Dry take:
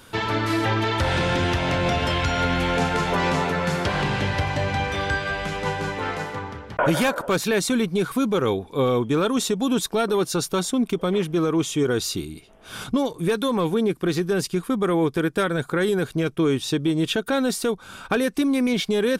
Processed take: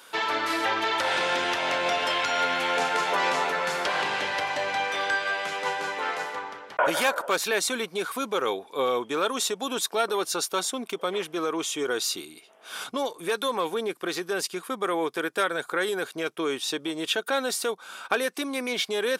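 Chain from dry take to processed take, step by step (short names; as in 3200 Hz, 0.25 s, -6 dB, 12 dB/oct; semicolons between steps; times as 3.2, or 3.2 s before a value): HPF 550 Hz 12 dB/oct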